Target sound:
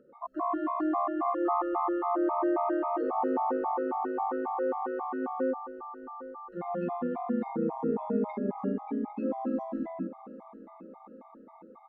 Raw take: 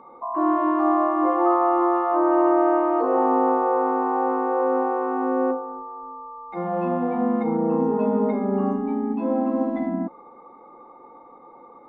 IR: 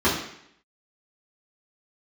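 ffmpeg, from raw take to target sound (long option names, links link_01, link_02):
-af "aecho=1:1:800|1600|2400|3200|4000:0.158|0.0824|0.0429|0.0223|0.0116,afftfilt=real='re*gt(sin(2*PI*3.7*pts/sr)*(1-2*mod(floor(b*sr/1024/640),2)),0)':imag='im*gt(sin(2*PI*3.7*pts/sr)*(1-2*mod(floor(b*sr/1024/640),2)),0)':win_size=1024:overlap=0.75,volume=-6dB"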